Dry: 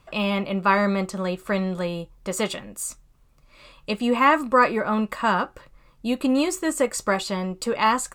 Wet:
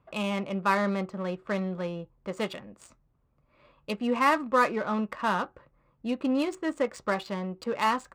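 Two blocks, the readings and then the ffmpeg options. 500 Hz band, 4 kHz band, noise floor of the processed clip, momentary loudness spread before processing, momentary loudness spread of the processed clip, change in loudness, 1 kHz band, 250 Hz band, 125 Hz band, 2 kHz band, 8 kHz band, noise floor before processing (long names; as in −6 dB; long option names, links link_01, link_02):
−5.5 dB, −7.5 dB, −69 dBFS, 12 LU, 12 LU, −5.5 dB, −5.5 dB, −5.5 dB, −5.5 dB, −6.0 dB, −16.5 dB, −57 dBFS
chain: -af "adynamicsmooth=sensitivity=3:basefreq=1600,highpass=64,volume=-5.5dB"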